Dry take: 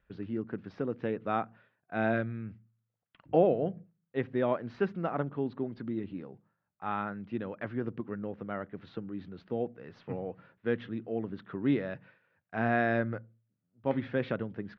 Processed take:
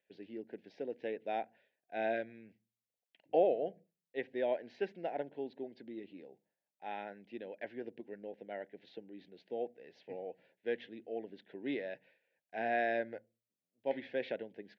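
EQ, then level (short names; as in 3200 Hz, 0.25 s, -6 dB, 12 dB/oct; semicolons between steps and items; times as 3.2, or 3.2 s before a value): HPF 450 Hz 12 dB/oct; dynamic EQ 1300 Hz, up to +6 dB, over -46 dBFS, Q 0.94; Butterworth band-stop 1200 Hz, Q 1; -2.5 dB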